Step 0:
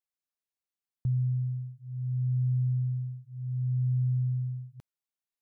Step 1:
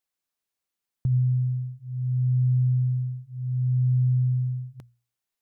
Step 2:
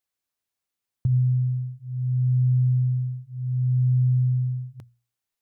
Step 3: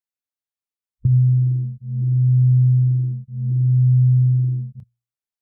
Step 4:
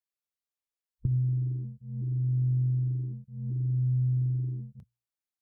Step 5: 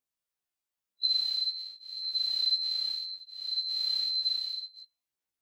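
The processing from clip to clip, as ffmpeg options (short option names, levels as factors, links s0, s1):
-af "bandreject=f=60:t=h:w=6,bandreject=f=120:t=h:w=6,volume=2.11"
-af "equalizer=f=100:w=4.7:g=8"
-af "afwtdn=0.0501,volume=2"
-af "equalizer=f=120:t=o:w=0.87:g=-9,volume=0.668"
-af "afftfilt=real='real(if(lt(b,736),b+184*(1-2*mod(floor(b/184),2)),b),0)':imag='imag(if(lt(b,736),b+184*(1-2*mod(floor(b/184),2)),b),0)':win_size=2048:overlap=0.75,aphaser=in_gain=1:out_gain=1:delay=2.8:decay=0.31:speed=0.95:type=sinusoidal,afftfilt=real='re*1.73*eq(mod(b,3),0)':imag='im*1.73*eq(mod(b,3),0)':win_size=2048:overlap=0.75,volume=1.68"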